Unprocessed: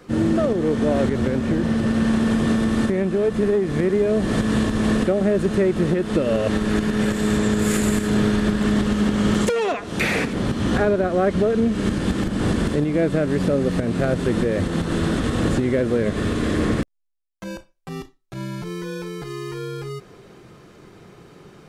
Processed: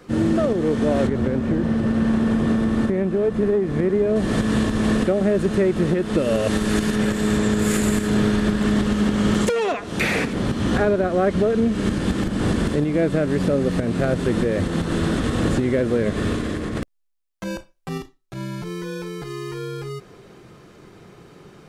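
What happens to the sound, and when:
1.07–4.16 s: treble shelf 2.3 kHz -8.5 dB
6.17–6.95 s: treble shelf 6.9 kHz -> 3.9 kHz +9.5 dB
16.34–17.98 s: compressor with a negative ratio -25 dBFS

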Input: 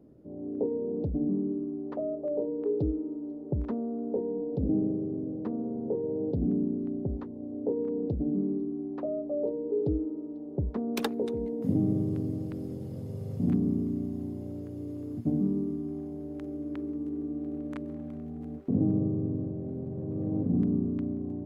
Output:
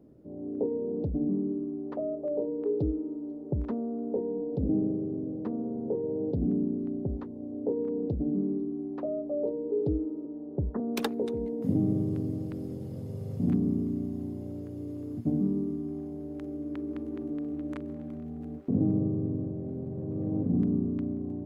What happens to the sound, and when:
10.25–10.80 s: steep low-pass 1.9 kHz 96 dB/octave
16.69–17.09 s: echo throw 210 ms, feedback 70%, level -3 dB

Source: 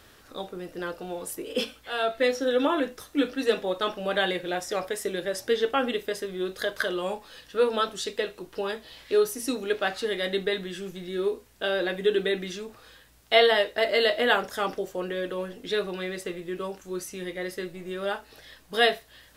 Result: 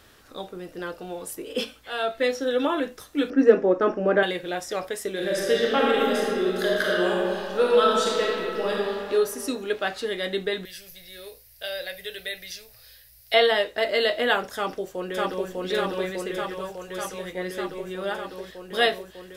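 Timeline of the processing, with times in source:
3.30–4.23 s: FFT filter 100 Hz 0 dB, 310 Hz +13 dB, 880 Hz +2 dB, 1.6 kHz +4 dB, 2.5 kHz -4 dB, 3.8 kHz -20 dB, 5.5 kHz -3 dB, 11 kHz -24 dB
5.11–8.81 s: reverb throw, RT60 2.4 s, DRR -4.5 dB
10.65–13.34 s: FFT filter 120 Hz 0 dB, 200 Hz -21 dB, 350 Hz -24 dB, 560 Hz -4 dB, 1.1 kHz -16 dB, 2 kHz 0 dB, 3.4 kHz -3 dB, 4.9 kHz +9 dB, 7.3 kHz -3 dB, 12 kHz +14 dB
14.54–15.50 s: echo throw 600 ms, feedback 80%, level 0 dB
16.42–17.33 s: peaking EQ 290 Hz -10 dB

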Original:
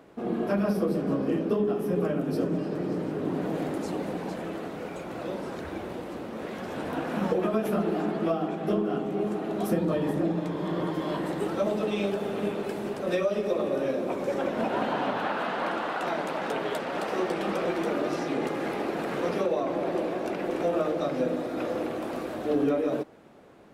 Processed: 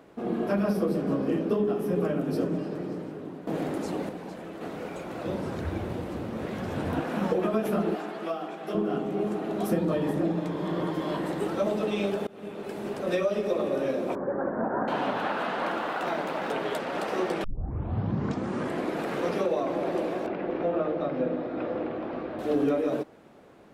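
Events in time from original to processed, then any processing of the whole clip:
2.39–3.47 s: fade out linear, to -14 dB
4.09–4.61 s: gain -5.5 dB
5.25–7.01 s: peaking EQ 92 Hz +14 dB 1.6 oct
7.95–8.75 s: high-pass 800 Hz 6 dB/octave
12.27–12.97 s: fade in, from -23 dB
14.15–14.88 s: Chebyshev low-pass 1.7 kHz, order 5
15.68–16.51 s: median filter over 5 samples
17.44 s: tape start 1.58 s
20.26–22.39 s: distance through air 330 m

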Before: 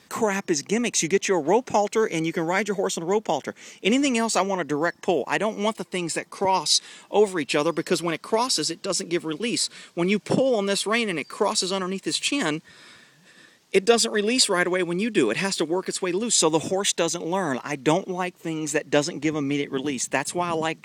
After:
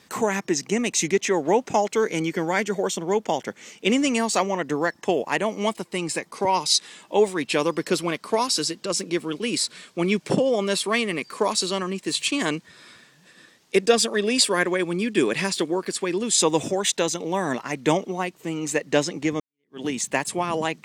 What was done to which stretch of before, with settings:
19.40–19.82 s: fade in exponential

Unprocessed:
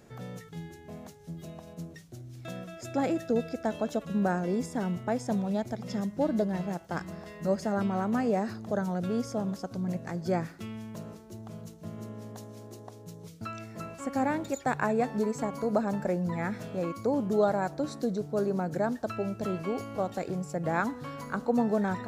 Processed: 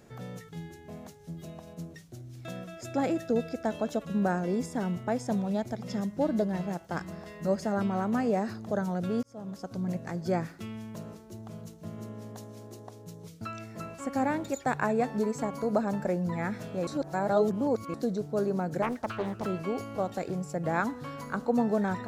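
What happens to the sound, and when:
9.23–9.78 s: fade in
16.87–17.94 s: reverse
18.82–19.46 s: loudspeaker Doppler distortion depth 0.65 ms

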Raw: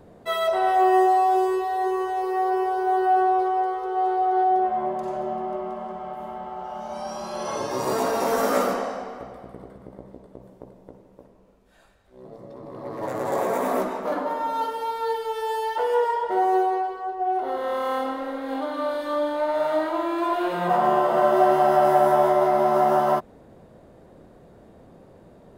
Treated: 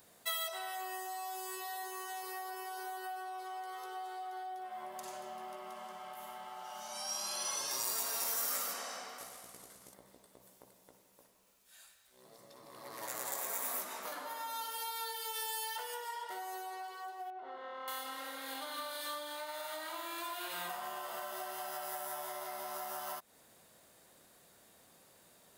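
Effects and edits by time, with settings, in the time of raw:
9.18–9.94 s: CVSD coder 64 kbps
17.30–17.88 s: tape spacing loss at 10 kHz 45 dB
whole clip: RIAA curve recording; compression, threshold -29 dBFS; amplifier tone stack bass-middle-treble 5-5-5; trim +5 dB

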